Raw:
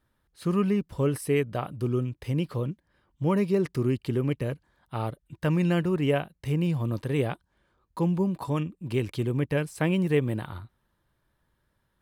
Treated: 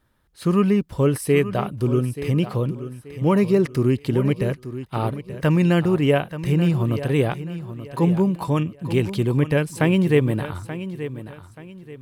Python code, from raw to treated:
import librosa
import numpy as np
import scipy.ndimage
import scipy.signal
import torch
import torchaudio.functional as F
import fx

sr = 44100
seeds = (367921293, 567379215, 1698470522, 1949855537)

y = fx.echo_feedback(x, sr, ms=881, feedback_pct=32, wet_db=-12.5)
y = F.gain(torch.from_numpy(y), 6.5).numpy()